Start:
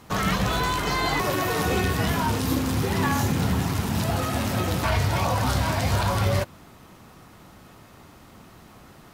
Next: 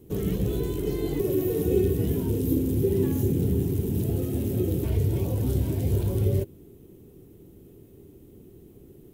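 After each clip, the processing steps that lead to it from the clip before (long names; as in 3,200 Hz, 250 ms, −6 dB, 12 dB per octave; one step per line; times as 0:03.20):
drawn EQ curve 130 Hz 0 dB, 220 Hz −3 dB, 400 Hz +8 dB, 620 Hz −15 dB, 1,200 Hz −28 dB, 3,200 Hz −15 dB, 4,600 Hz −21 dB, 15,000 Hz +1 dB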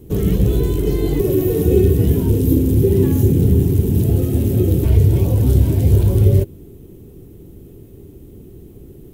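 low-shelf EQ 95 Hz +9.5 dB
level +7.5 dB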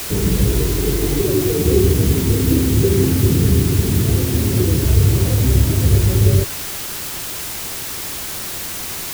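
background noise white −26 dBFS
level −1 dB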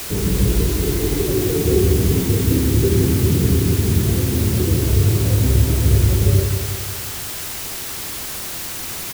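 repeating echo 179 ms, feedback 54%, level −7 dB
level −2.5 dB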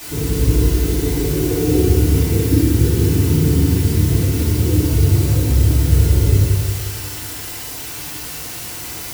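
feedback delay network reverb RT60 0.79 s, low-frequency decay 1.4×, high-frequency decay 0.85×, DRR −8 dB
level −9.5 dB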